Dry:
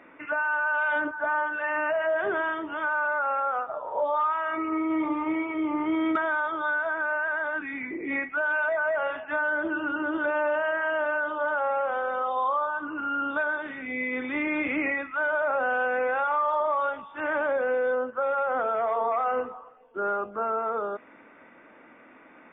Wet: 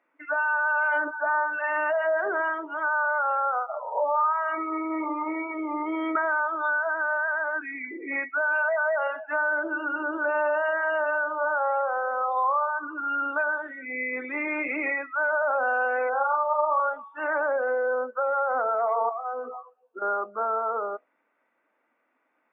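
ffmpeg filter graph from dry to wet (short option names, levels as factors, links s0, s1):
-filter_complex "[0:a]asettb=1/sr,asplit=3[s0][s1][s2];[s0]atrim=end=16.094[s3];[s1]atrim=start=16.09:end=16.8,asetpts=PTS-STARTPTS,afade=t=in:d=0.004:c=qsin,afade=t=out:st=0.706:d=0.004:c=qsin,asuperstop=centerf=2200:order=4:qfactor=1.1,asplit=2[s4][s5];[s5]adelay=40,volume=0.562[s6];[s4][s6]amix=inputs=2:normalize=0,atrim=end_sample=31311[s7];[s2]atrim=start=16.796[s8];[s3][s7]acrossfade=d=0.004:c1=hsin:c2=qsin[s9];[s9][s8]acrossfade=d=0.004:c1=qsin:c2=hsin,asettb=1/sr,asplit=3[s10][s11][s12];[s10]atrim=end=19.094[s13];[s11]atrim=start=19.09:end=20.02,asetpts=PTS-STARTPTS,afade=t=in:d=0.004:c=qsin,afade=t=out:st=0.926:d=0.004:c=qsin,bandreject=f=2000:w=9.4,acompressor=threshold=0.0251:ratio=12:attack=3.2:release=140:knee=1:detection=peak,asplit=2[s14][s15];[s15]adelay=16,volume=0.631[s16];[s14][s16]amix=inputs=2:normalize=0,atrim=end_sample=41013[s17];[s12]atrim=start=20.016[s18];[s13][s17]acrossfade=d=0.004:c1=hsin:c2=qsin[s19];[s19][s18]acrossfade=d=0.004:c1=qsin:c2=hsin,afftdn=nr=21:nf=-34,highpass=f=480:p=1,equalizer=f=810:t=o:w=1.9:g=3.5"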